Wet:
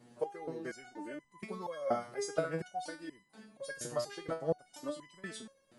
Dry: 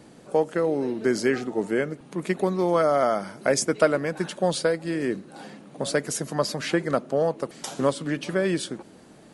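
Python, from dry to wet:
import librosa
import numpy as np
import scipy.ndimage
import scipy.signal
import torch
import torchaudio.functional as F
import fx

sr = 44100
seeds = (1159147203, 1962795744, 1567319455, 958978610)

y = fx.echo_wet_bandpass(x, sr, ms=170, feedback_pct=50, hz=1500.0, wet_db=-21.5)
y = fx.stretch_vocoder(y, sr, factor=0.62)
y = fx.resonator_held(y, sr, hz=4.2, low_hz=120.0, high_hz=1000.0)
y = y * librosa.db_to_amplitude(1.0)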